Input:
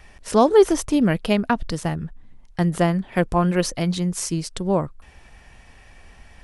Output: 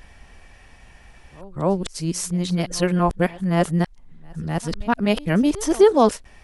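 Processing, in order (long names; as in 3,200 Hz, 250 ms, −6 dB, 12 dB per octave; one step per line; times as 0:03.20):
played backwards from end to start
echo ahead of the sound 253 ms −22 dB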